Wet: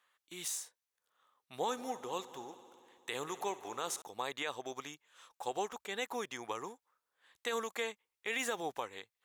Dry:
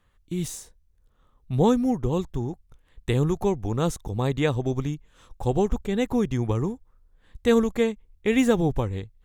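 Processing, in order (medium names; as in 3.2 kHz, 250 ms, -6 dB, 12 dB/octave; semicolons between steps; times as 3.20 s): high-pass 890 Hz 12 dB/octave; peak limiter -23 dBFS, peak gain reduction 9 dB; 1.57–4.02 s: multi-head delay 62 ms, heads first and third, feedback 71%, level -18.5 dB; trim -1.5 dB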